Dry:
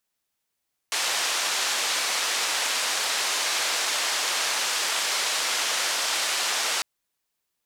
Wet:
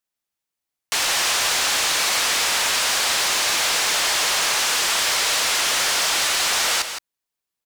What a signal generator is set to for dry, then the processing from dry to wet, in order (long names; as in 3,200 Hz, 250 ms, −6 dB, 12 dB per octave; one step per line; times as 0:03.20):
band-limited noise 590–6,500 Hz, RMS −26 dBFS 5.90 s
leveller curve on the samples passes 3
brickwall limiter −16.5 dBFS
on a send: single-tap delay 165 ms −9 dB